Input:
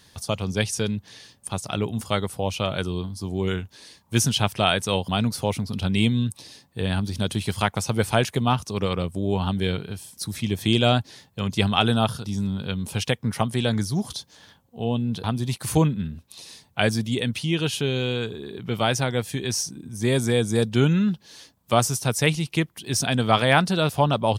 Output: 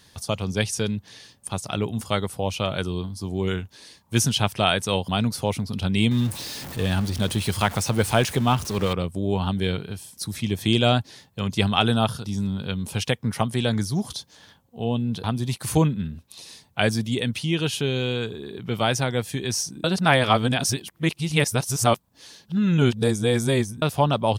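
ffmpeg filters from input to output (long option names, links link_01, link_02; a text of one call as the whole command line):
ffmpeg -i in.wav -filter_complex "[0:a]asettb=1/sr,asplit=3[link_01][link_02][link_03];[link_01]atrim=end=6.114[link_04];[link_02]atrim=start=6.11:end=8.93,asetpts=PTS-STARTPTS,afade=type=in:duration=0.004:curve=qsin,afade=type=out:start_time=2.816:duration=0.004:curve=qsin,aeval=exprs='val(0)+0.5*0.0299*sgn(val(0))':channel_layout=same[link_05];[link_03]atrim=start=8.926[link_06];[link_04][link_05]acrossfade=duration=0.004:curve1=hsin:curve2=qsin[link_07];[link_07][link_06]acrossfade=duration=0.004:curve1=qsin:curve2=hsin,asplit=3[link_08][link_09][link_10];[link_08]atrim=end=19.842[link_11];[link_09]atrim=start=19.838:end=23.822,asetpts=PTS-STARTPTS,areverse[link_12];[link_10]atrim=start=23.818[link_13];[link_11][link_12]acrossfade=duration=0.004:curve1=hsin:curve2=hsin[link_14];[link_14][link_13]acrossfade=duration=0.004:curve1=hsin:curve2=hsin" out.wav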